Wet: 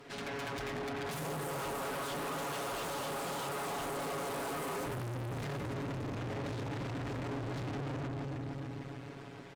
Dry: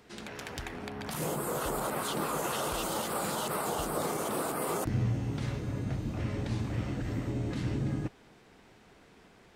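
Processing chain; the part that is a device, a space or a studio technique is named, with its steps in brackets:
comb filter 7.2 ms, depth 88%
delay that swaps between a low-pass and a high-pass 149 ms, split 1,300 Hz, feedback 72%, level −5 dB
tube preamp driven hard (tube saturation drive 44 dB, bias 0.75; low-shelf EQ 100 Hz −6.5 dB; high-shelf EQ 4,800 Hz −8 dB)
level +8.5 dB

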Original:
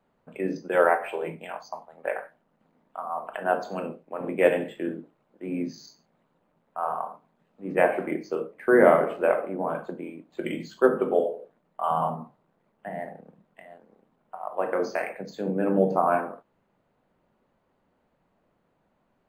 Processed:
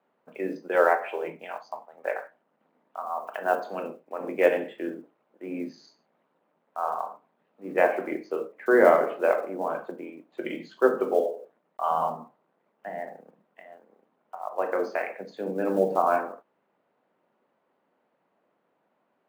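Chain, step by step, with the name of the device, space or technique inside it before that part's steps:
early digital voice recorder (band-pass filter 290–3,500 Hz; one scale factor per block 7 bits)
0:03.01–0:03.68: high-shelf EQ 11,000 Hz +6 dB

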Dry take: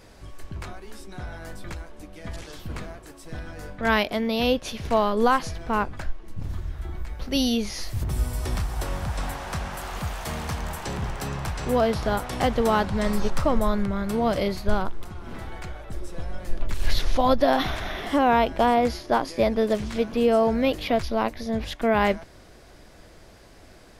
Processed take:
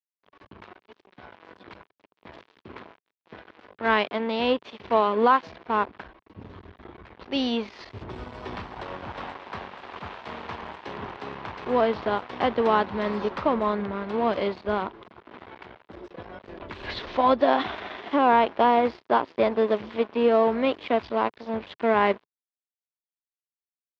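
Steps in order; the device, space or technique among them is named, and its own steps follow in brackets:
blown loudspeaker (dead-zone distortion −34 dBFS; loudspeaker in its box 150–3,700 Hz, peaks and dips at 150 Hz −10 dB, 410 Hz +4 dB, 1,000 Hz +5 dB)

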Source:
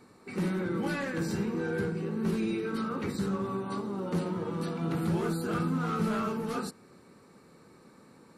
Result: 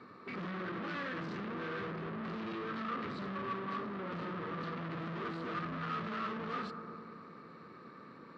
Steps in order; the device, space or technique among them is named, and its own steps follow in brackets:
analogue delay pedal into a guitar amplifier (bucket-brigade delay 103 ms, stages 1,024, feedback 79%, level −19 dB; tube saturation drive 44 dB, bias 0.6; loudspeaker in its box 110–4,100 Hz, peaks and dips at 810 Hz −6 dB, 1,200 Hz +10 dB, 1,800 Hz +4 dB)
level +4.5 dB

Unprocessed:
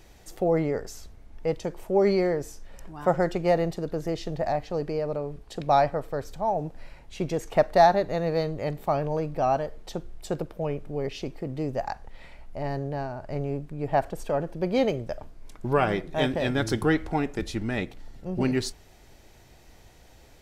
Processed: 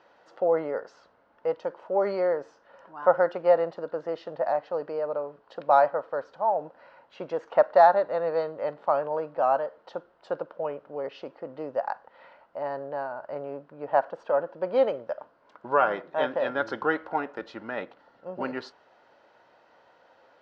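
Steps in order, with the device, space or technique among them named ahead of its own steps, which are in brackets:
phone earpiece (loudspeaker in its box 370–3,800 Hz, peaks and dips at 380 Hz −5 dB, 540 Hz +8 dB, 980 Hz +8 dB, 1,400 Hz +9 dB, 2,300 Hz −8 dB, 3,600 Hz −6 dB)
level −2.5 dB

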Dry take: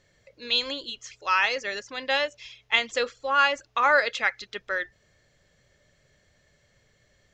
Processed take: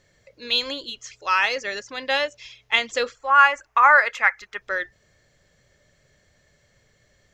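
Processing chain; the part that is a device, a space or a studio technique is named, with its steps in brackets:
exciter from parts (in parallel at −13.5 dB: high-pass filter 2,800 Hz 24 dB per octave + soft clipping −33.5 dBFS, distortion −4 dB)
0:03.15–0:04.62: on the sum: octave-band graphic EQ 125/250/500/1,000/2,000/4,000 Hz −10/−7/−5/+7/+5/−12 dB
level +2.5 dB

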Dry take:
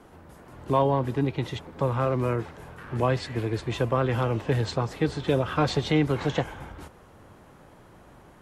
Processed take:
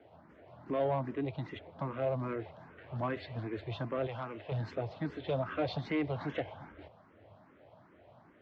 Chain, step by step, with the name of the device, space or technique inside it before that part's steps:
barber-pole phaser into a guitar amplifier (frequency shifter mixed with the dry sound +2.5 Hz; soft clipping −20 dBFS, distortion −17 dB; loudspeaker in its box 99–4,100 Hz, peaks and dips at 100 Hz +7 dB, 280 Hz +3 dB, 640 Hz +10 dB, 2,100 Hz +3 dB)
0:04.07–0:04.52: low-shelf EQ 500 Hz −9.5 dB
level −7.5 dB

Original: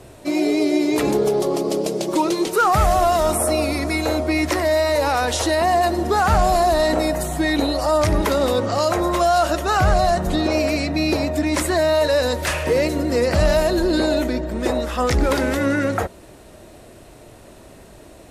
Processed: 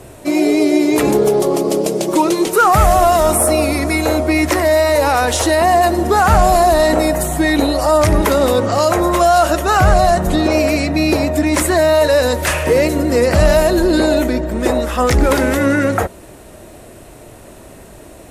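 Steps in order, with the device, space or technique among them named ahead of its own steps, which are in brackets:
exciter from parts (in parallel at −4.5 dB: high-pass filter 5,000 Hz 12 dB per octave + soft clipping −20.5 dBFS, distortion −18 dB + high-pass filter 2,700 Hz 12 dB per octave)
on the sum: level +5.5 dB

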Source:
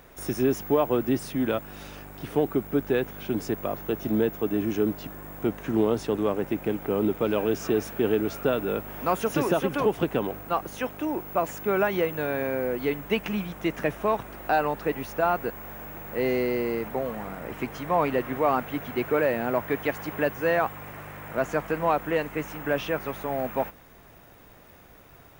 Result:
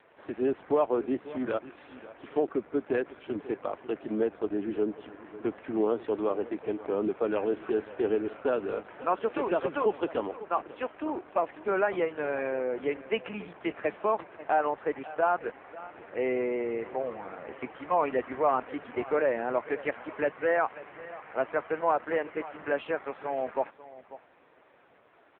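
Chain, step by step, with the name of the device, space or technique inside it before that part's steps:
satellite phone (band-pass filter 320–3,100 Hz; single-tap delay 543 ms −16.5 dB; level −1 dB; AMR narrowband 5.15 kbit/s 8,000 Hz)

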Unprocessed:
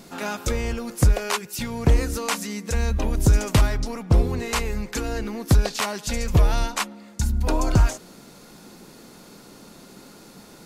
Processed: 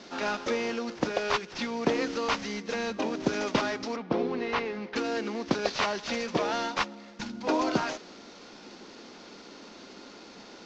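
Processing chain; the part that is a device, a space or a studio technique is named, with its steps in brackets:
early wireless headset (high-pass filter 230 Hz 24 dB per octave; variable-slope delta modulation 32 kbit/s)
0:03.96–0:04.96: high-frequency loss of the air 200 metres

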